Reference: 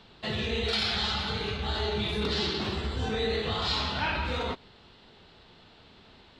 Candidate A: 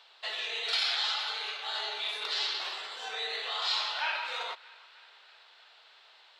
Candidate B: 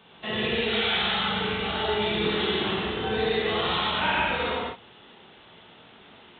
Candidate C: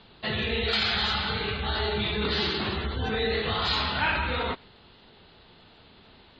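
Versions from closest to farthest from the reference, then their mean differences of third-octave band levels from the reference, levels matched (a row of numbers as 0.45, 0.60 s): C, B, A; 3.5, 6.5, 11.0 dB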